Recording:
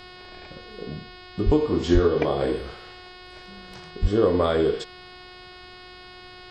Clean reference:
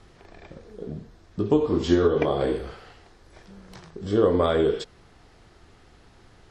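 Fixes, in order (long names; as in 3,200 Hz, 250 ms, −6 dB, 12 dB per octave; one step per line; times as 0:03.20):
hum removal 363.8 Hz, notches 14
0:01.45–0:01.57: high-pass filter 140 Hz 24 dB per octave
0:01.93–0:02.05: high-pass filter 140 Hz 24 dB per octave
0:04.01–0:04.13: high-pass filter 140 Hz 24 dB per octave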